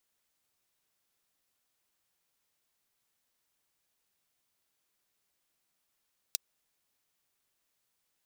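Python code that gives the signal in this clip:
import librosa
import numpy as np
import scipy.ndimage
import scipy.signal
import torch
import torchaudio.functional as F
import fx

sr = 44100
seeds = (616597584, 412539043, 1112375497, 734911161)

y = fx.drum_hat(sr, length_s=0.24, from_hz=4100.0, decay_s=0.02)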